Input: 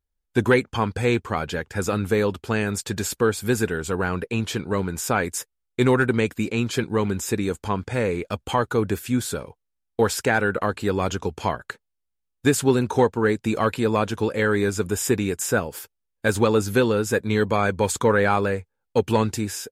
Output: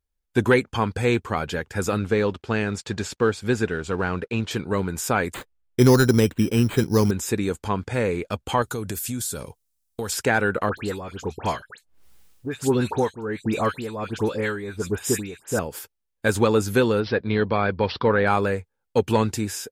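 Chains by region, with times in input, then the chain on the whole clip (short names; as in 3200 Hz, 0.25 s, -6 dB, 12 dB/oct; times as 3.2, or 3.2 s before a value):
1.99–4.51 G.711 law mismatch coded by A + LPF 5700 Hz
5.34–7.11 tilt -2 dB/oct + careless resampling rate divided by 8×, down none, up hold
8.62–10.12 tone controls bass +4 dB, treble +15 dB + compressor 5:1, threshold -26 dBFS
10.69–15.59 upward compressor, threshold -26 dBFS + tremolo 1.4 Hz, depth 73% + dispersion highs, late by 89 ms, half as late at 2100 Hz
17–18.27 air absorption 53 m + AM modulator 250 Hz, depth 10% + careless resampling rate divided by 4×, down none, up filtered
whole clip: dry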